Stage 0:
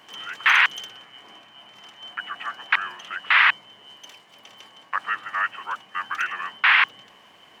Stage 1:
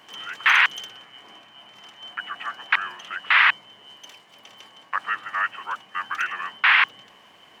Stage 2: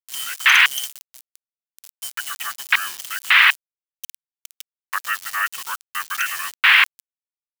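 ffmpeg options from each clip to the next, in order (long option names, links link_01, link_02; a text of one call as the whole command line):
ffmpeg -i in.wav -af anull out.wav
ffmpeg -i in.wav -af "aeval=exprs='val(0)*gte(abs(val(0)),0.015)':channel_layout=same,crystalizer=i=9.5:c=0,volume=-6dB" out.wav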